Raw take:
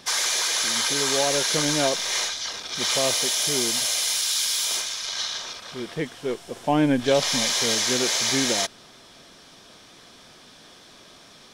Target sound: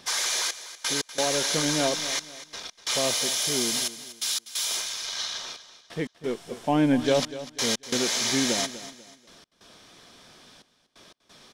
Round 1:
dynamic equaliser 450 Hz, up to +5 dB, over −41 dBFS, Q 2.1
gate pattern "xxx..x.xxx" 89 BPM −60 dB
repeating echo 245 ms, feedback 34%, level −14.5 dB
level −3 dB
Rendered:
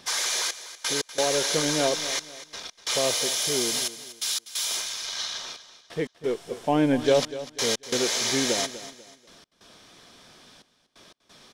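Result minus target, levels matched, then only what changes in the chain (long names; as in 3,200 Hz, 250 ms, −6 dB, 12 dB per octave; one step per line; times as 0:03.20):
500 Hz band +2.5 dB
change: dynamic equaliser 220 Hz, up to +5 dB, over −41 dBFS, Q 2.1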